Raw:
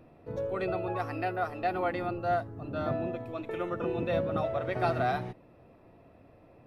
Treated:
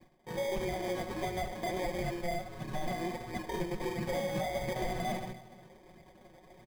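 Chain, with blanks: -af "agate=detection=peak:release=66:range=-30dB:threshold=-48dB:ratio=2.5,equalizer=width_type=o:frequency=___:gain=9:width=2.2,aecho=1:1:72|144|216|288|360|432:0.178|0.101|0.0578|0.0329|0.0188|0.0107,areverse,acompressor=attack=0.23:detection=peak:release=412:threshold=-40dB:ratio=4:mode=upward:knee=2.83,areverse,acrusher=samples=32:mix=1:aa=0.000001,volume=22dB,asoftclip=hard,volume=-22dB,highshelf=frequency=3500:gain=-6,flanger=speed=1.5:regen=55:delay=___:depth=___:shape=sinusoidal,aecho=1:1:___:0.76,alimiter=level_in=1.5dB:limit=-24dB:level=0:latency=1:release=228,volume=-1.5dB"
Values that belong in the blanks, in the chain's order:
2000, 0.4, 5.7, 5.4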